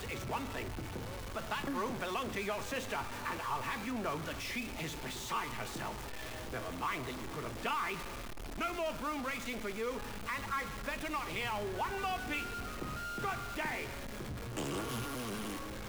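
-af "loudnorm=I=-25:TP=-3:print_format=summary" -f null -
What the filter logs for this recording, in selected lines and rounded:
Input Integrated:    -38.6 LUFS
Input True Peak:     -22.8 dBTP
Input LRA:             1.5 LU
Input Threshold:     -48.6 LUFS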